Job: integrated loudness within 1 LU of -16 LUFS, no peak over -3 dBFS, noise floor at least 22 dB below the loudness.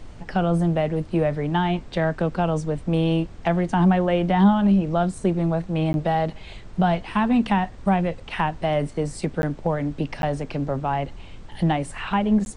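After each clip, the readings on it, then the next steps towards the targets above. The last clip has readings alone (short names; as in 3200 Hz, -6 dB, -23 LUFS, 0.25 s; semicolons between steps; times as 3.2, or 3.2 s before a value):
dropouts 4; longest dropout 11 ms; noise floor -41 dBFS; noise floor target -45 dBFS; loudness -23.0 LUFS; peak -7.5 dBFS; loudness target -16.0 LUFS
-> interpolate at 5.93/9.42/10.22/12.45, 11 ms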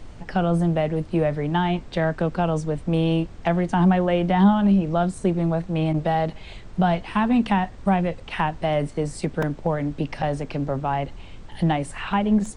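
dropouts 0; noise floor -41 dBFS; noise floor target -45 dBFS
-> noise print and reduce 6 dB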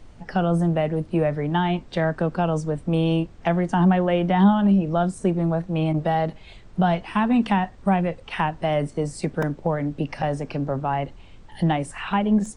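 noise floor -46 dBFS; loudness -23.0 LUFS; peak -7.5 dBFS; loudness target -16.0 LUFS
-> gain +7 dB; limiter -3 dBFS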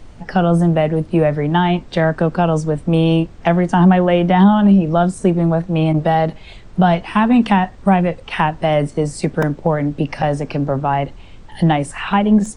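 loudness -16.0 LUFS; peak -3.0 dBFS; noise floor -39 dBFS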